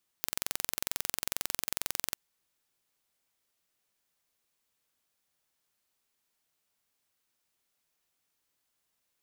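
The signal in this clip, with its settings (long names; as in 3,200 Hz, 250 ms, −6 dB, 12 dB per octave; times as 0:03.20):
impulse train 22.2 per second, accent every 0, −3.5 dBFS 1.93 s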